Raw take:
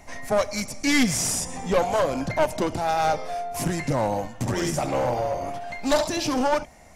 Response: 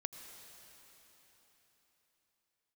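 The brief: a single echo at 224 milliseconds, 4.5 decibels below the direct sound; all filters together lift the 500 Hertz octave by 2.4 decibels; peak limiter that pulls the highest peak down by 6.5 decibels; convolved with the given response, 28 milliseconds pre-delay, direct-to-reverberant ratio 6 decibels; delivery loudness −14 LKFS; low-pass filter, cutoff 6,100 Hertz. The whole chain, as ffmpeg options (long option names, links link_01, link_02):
-filter_complex "[0:a]lowpass=6100,equalizer=frequency=500:width_type=o:gain=3,alimiter=limit=-15dB:level=0:latency=1,aecho=1:1:224:0.596,asplit=2[link_01][link_02];[1:a]atrim=start_sample=2205,adelay=28[link_03];[link_02][link_03]afir=irnorm=-1:irlink=0,volume=-4dB[link_04];[link_01][link_04]amix=inputs=2:normalize=0,volume=10dB"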